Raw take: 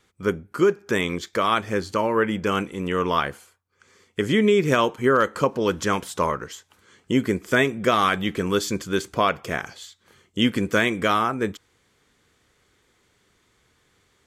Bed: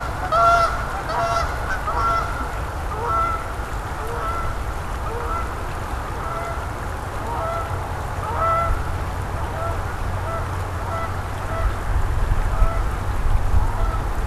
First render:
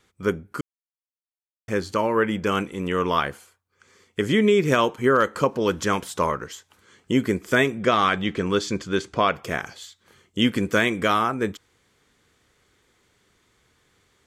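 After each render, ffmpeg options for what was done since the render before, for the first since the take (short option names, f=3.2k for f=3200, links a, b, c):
-filter_complex "[0:a]asettb=1/sr,asplit=3[a][b][c];[a]atrim=end=7.824[d];[b]atrim=start=7.82:end=9.34,asetpts=PTS-STARTPTS,afade=t=in:d=0.004:c=qsin,afade=t=out:st=1.516:d=0.004:c=qsin,lowpass=6.2k[e];[c]atrim=start=9.336[f];[d][e]acrossfade=d=0.004:c1=hsin:c2=qsin[g];[g][f]acrossfade=d=0.004:c1=qsin:c2=hsin,asplit=3[h][i][j];[h]atrim=end=0.61,asetpts=PTS-STARTPTS,afade=t=out:st=0.606:d=0.004:c=hsin[k];[i]atrim=start=0.61:end=1.68,asetpts=PTS-STARTPTS,volume=0[l];[j]atrim=start=1.68,asetpts=PTS-STARTPTS,afade=t=in:d=0.004:c=hsin[m];[k][l][m]concat=n=3:v=0:a=1"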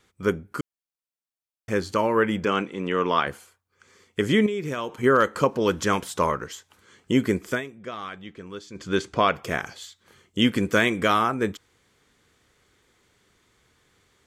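-filter_complex "[0:a]asettb=1/sr,asplit=3[a][b][c];[a]atrim=end=2.454[d];[b]atrim=start=2.45:end=3.27,asetpts=PTS-STARTPTS,afade=t=in:d=0.004:c=qsin,afade=t=out:st=0.816:d=0.004:c=qsin,highpass=170,lowpass=5k[e];[c]atrim=start=3.266[f];[d][e]acrossfade=d=0.004:c1=hsin:c2=qsin[g];[g][f]acrossfade=d=0.004:c1=qsin:c2=hsin,asettb=1/sr,asplit=3[h][i][j];[h]atrim=end=4.464[k];[i]atrim=start=4.46:end=5.03,asetpts=PTS-STARTPTS,afade=t=in:d=0.004:c=qsin,afade=t=out:st=0.566:d=0.004:c=qsin,acompressor=threshold=-30dB:ratio=2.5:attack=3.2:release=140:knee=1:detection=peak[l];[j]atrim=start=5.026[m];[k][l]acrossfade=d=0.004:c1=hsin:c2=qsin[n];[n][m]acrossfade=d=0.004:c1=qsin:c2=hsin,asplit=3[o][p][q];[o]atrim=end=7.61,asetpts=PTS-STARTPTS,afade=t=out:st=7.46:d=0.15:silence=0.16788[r];[p]atrim=start=7.61:end=8.74,asetpts=PTS-STARTPTS,volume=-15.5dB[s];[q]atrim=start=8.74,asetpts=PTS-STARTPTS,afade=t=in:d=0.15:silence=0.16788[t];[r][s][t]concat=n=3:v=0:a=1"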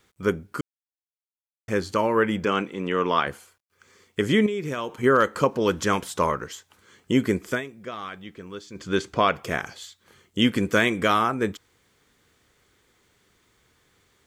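-af "acrusher=bits=11:mix=0:aa=0.000001"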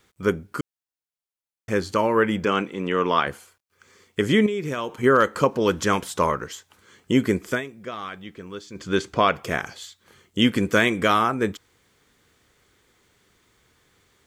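-af "volume=1.5dB"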